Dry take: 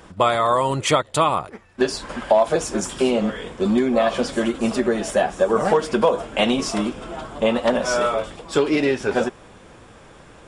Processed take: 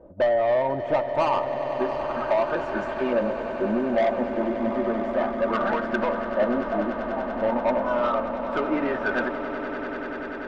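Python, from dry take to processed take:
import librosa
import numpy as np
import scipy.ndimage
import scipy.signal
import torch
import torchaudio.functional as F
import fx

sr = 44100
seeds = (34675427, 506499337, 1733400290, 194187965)

p1 = fx.filter_lfo_lowpass(x, sr, shape='saw_up', hz=0.32, low_hz=550.0, high_hz=1800.0, q=4.1)
p2 = 10.0 ** (-11.5 / 20.0) * np.tanh(p1 / 10.0 ** (-11.5 / 20.0))
p3 = p2 + 0.42 * np.pad(p2, (int(3.3 * sr / 1000.0), 0))[:len(p2)]
p4 = p3 + fx.echo_swell(p3, sr, ms=97, loudest=8, wet_db=-15.0, dry=0)
y = F.gain(torch.from_numpy(p4), -7.5).numpy()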